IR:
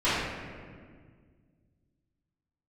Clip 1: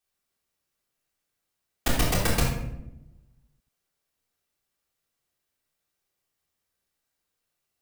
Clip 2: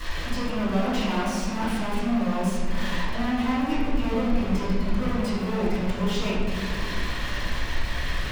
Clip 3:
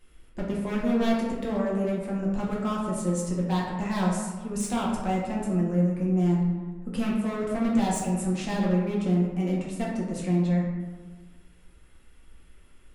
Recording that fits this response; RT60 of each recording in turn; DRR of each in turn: 2; 0.90, 1.8, 1.4 seconds; −5.0, −15.5, −5.0 decibels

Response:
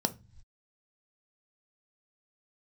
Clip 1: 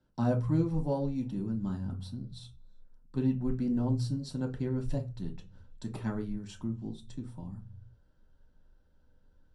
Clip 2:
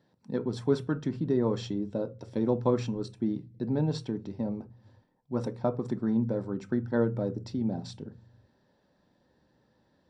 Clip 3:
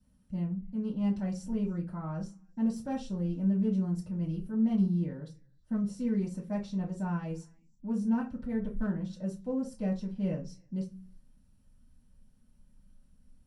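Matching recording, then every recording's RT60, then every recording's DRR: 2; non-exponential decay, non-exponential decay, non-exponential decay; 0.5, 8.5, −6.5 decibels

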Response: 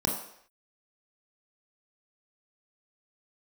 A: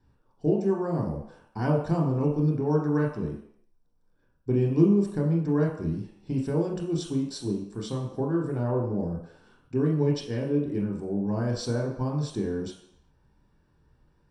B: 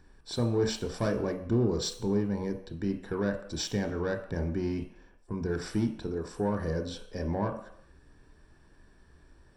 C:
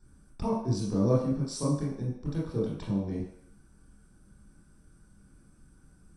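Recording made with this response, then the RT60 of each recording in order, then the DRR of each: A; non-exponential decay, non-exponential decay, non-exponential decay; −0.5, 5.5, −6.5 decibels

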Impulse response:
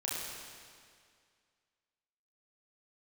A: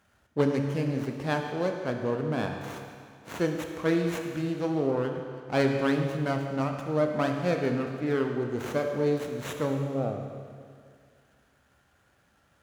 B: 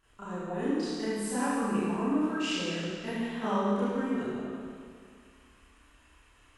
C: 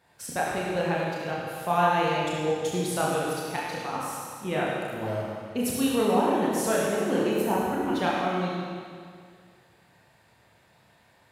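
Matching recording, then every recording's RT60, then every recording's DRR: C; 2.1, 2.1, 2.1 seconds; 3.5, −14.0, −5.5 decibels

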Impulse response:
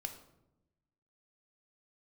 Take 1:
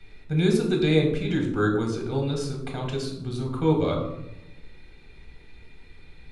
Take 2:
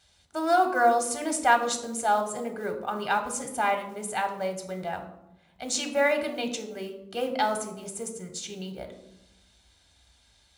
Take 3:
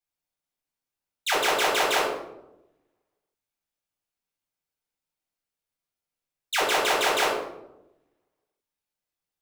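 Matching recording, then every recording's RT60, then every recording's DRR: 2; 0.90, 0.90, 0.90 seconds; 0.5, 5.5, −4.5 decibels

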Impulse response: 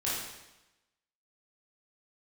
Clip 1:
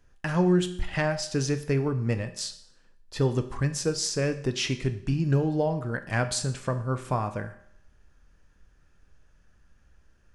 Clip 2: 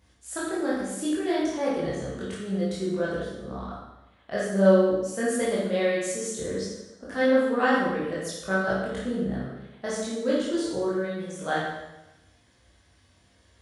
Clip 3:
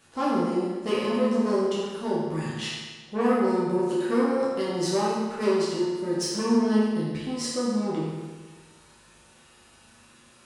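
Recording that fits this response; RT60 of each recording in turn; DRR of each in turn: 2; 0.65, 1.0, 1.4 seconds; 7.5, −8.5, −8.5 decibels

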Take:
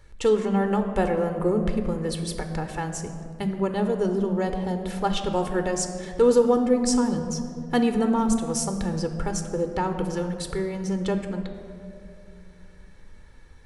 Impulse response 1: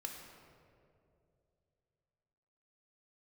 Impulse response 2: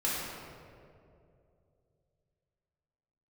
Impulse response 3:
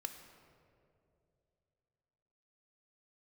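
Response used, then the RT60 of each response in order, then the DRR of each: 3; 2.6, 2.6, 2.7 seconds; 1.5, −7.5, 6.5 decibels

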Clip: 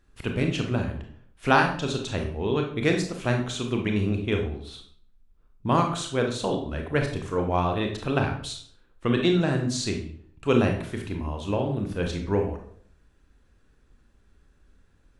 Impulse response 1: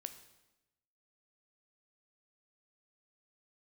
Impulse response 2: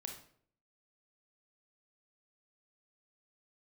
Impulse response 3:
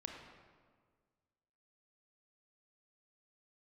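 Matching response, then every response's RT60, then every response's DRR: 2; 1.0, 0.60, 1.7 seconds; 8.5, 2.5, 1.5 decibels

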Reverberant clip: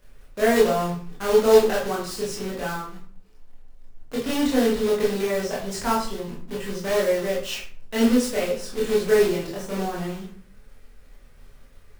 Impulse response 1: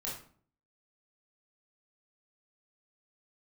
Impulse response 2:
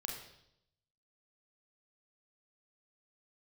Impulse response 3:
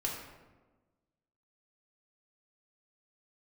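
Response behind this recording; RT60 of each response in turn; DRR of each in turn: 1; 0.50, 0.75, 1.3 seconds; −6.5, 0.5, −3.5 decibels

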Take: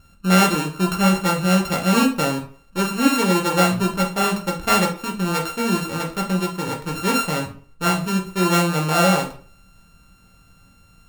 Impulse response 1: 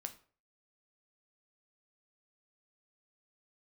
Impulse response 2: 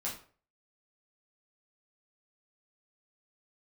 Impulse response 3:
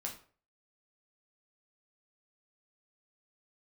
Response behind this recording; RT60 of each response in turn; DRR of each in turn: 3; 0.45, 0.45, 0.45 seconds; 6.5, −6.0, −1.0 decibels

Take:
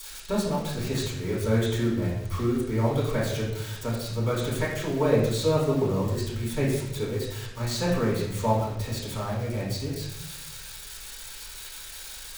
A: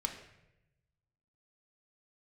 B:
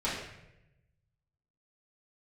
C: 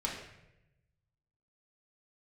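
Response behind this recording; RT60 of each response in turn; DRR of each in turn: B; 0.90, 0.90, 0.90 seconds; 3.0, −10.5, −4.0 decibels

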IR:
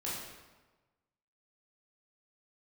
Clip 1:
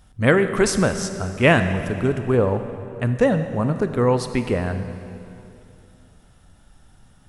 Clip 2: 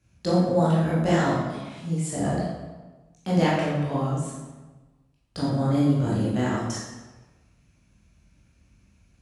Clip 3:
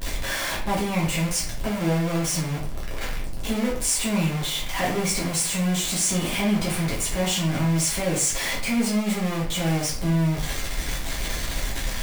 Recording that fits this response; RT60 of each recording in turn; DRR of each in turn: 2; 2.7, 1.2, 0.45 seconds; 8.5, −7.5, −5.0 decibels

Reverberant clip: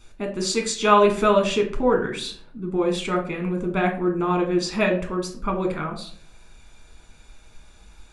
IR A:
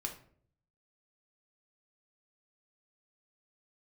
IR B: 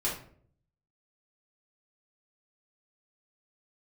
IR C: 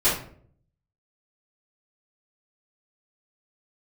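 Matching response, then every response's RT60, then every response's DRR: A; 0.55, 0.55, 0.55 seconds; 2.5, −6.5, −14.5 decibels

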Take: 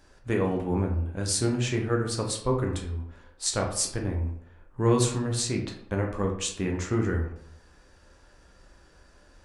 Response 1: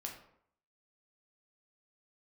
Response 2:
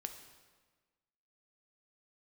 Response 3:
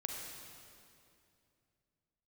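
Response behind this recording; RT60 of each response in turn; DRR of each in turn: 1; 0.65, 1.4, 2.6 seconds; 0.0, 6.0, 0.5 decibels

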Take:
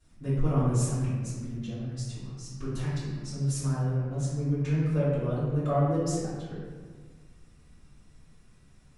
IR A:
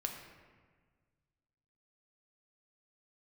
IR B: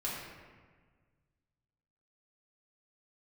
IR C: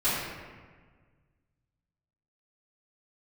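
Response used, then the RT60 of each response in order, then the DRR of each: C; 1.5, 1.5, 1.5 seconds; 2.0, −7.5, −17.0 decibels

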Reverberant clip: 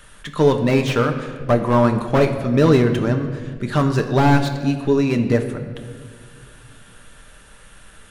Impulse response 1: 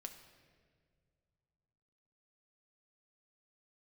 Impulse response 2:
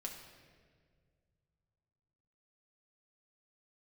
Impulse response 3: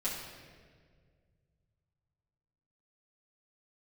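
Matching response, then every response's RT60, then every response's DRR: 1; 2.0, 1.9, 1.8 seconds; 4.5, −0.5, −10.0 decibels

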